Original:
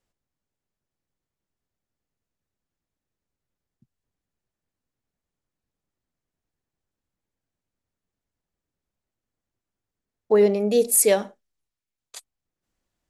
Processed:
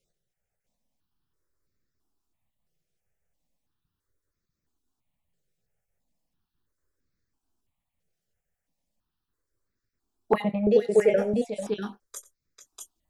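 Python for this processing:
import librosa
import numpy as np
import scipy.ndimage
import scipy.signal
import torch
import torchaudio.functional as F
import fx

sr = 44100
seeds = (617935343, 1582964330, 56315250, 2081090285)

y = fx.spec_dropout(x, sr, seeds[0], share_pct=29)
y = fx.spacing_loss(y, sr, db_at_10k=34, at=(10.42, 11.18))
y = fx.doubler(y, sr, ms=24.0, db=-13.5)
y = fx.echo_multitap(y, sr, ms=(90, 443, 643), db=(-19.5, -9.5, -3.5))
y = fx.phaser_held(y, sr, hz=3.0, low_hz=270.0, high_hz=3000.0)
y = y * 10.0 ** (4.5 / 20.0)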